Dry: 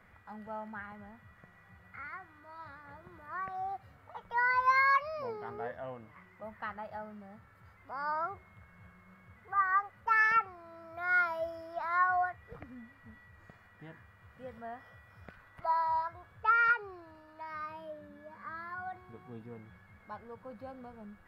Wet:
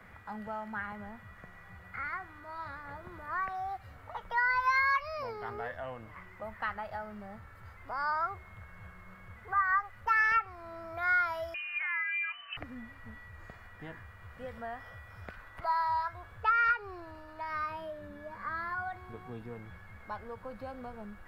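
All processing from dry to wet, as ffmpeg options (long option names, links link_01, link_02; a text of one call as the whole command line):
ffmpeg -i in.wav -filter_complex "[0:a]asettb=1/sr,asplit=3[link_01][link_02][link_03];[link_01]atrim=end=11.544[link_04];[link_02]atrim=start=11.54:end=12.57,asetpts=PTS-STARTPTS,afade=type=in:duration=0.004:curve=qsin,afade=type=out:start_time=1.026:duration=0.004:curve=qsin,acompressor=threshold=-37dB:ratio=12:attack=3.2:release=140:knee=1:detection=peak,lowpass=frequency=2600:width_type=q:width=0.5098,lowpass=frequency=2600:width_type=q:width=0.6013,lowpass=frequency=2600:width_type=q:width=0.9,lowpass=frequency=2600:width_type=q:width=2.563,afreqshift=-3100[link_05];[link_03]atrim=start=12.566[link_06];[link_04][link_05]acrossfade=duration=0.004:curve1=hsin:curve2=qsin[link_07];[link_07][link_06]acrossfade=duration=0.004:curve1=qsin:curve2=hsin,asubboost=boost=6.5:cutoff=58,acrossover=split=120|1200[link_08][link_09][link_10];[link_08]acompressor=threshold=-58dB:ratio=4[link_11];[link_09]acompressor=threshold=-47dB:ratio=4[link_12];[link_10]acompressor=threshold=-34dB:ratio=4[link_13];[link_11][link_12][link_13]amix=inputs=3:normalize=0,volume=7dB" out.wav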